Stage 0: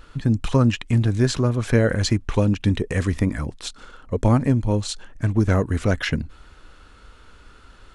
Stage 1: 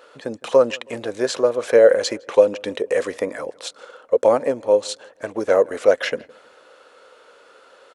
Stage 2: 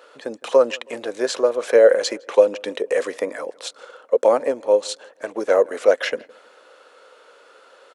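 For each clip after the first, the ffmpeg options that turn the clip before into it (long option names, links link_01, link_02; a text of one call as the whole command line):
ffmpeg -i in.wav -filter_complex "[0:a]highpass=frequency=520:width_type=q:width=4.9,asplit=2[link_01][link_02];[link_02]adelay=161,lowpass=frequency=2200:poles=1,volume=-23.5dB,asplit=2[link_03][link_04];[link_04]adelay=161,lowpass=frequency=2200:poles=1,volume=0.42,asplit=2[link_05][link_06];[link_06]adelay=161,lowpass=frequency=2200:poles=1,volume=0.42[link_07];[link_01][link_03][link_05][link_07]amix=inputs=4:normalize=0" out.wav
ffmpeg -i in.wav -af "highpass=270" out.wav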